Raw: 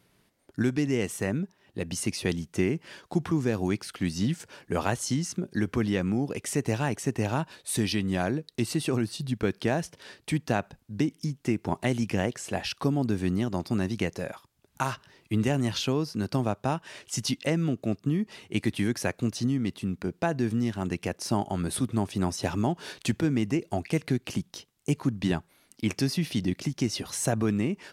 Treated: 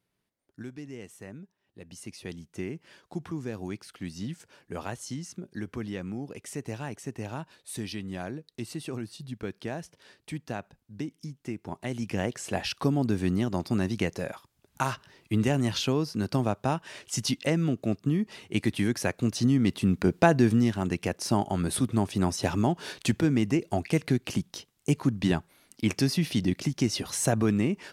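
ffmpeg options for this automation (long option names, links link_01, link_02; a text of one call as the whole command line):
ffmpeg -i in.wav -af "volume=8dB,afade=type=in:start_time=1.79:duration=1.03:silence=0.473151,afade=type=in:start_time=11.81:duration=0.68:silence=0.354813,afade=type=in:start_time=19.19:duration=0.95:silence=0.421697,afade=type=out:start_time=20.14:duration=0.7:silence=0.473151" out.wav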